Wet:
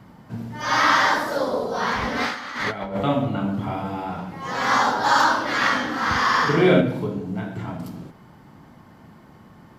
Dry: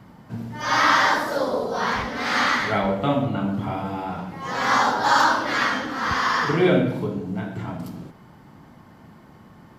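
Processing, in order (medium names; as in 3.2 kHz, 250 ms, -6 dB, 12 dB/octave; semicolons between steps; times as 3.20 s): 2.02–3.03 s: compressor with a negative ratio -26 dBFS, ratio -0.5; 5.59–6.81 s: doubling 43 ms -2 dB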